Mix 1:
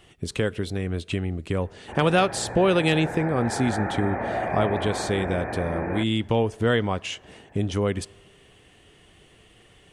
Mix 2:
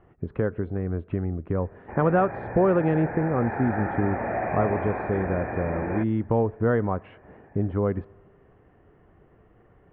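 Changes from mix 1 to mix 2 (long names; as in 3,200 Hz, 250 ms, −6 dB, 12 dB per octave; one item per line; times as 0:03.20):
speech: add low-pass filter 1,500 Hz 24 dB per octave
master: add high-frequency loss of the air 150 metres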